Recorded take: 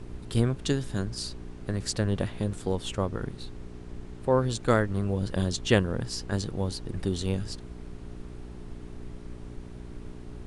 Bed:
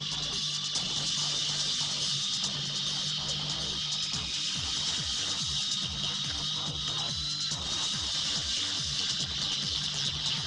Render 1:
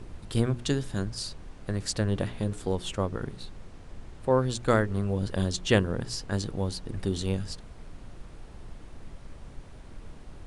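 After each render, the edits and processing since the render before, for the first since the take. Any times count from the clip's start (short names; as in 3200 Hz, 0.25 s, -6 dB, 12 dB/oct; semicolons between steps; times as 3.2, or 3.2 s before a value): de-hum 60 Hz, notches 7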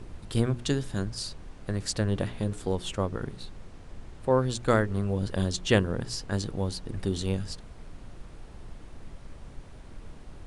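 nothing audible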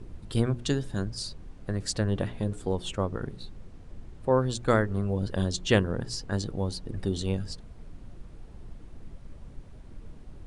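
denoiser 7 dB, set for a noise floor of -47 dBFS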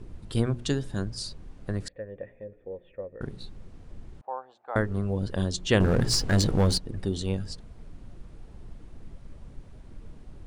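1.88–3.21 vocal tract filter e; 4.21–4.76 ladder band-pass 850 Hz, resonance 70%; 5.8–6.78 sample leveller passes 3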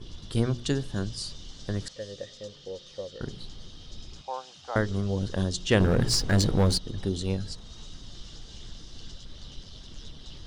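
add bed -19 dB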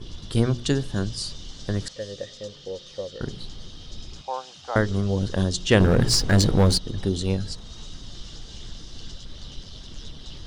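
gain +4.5 dB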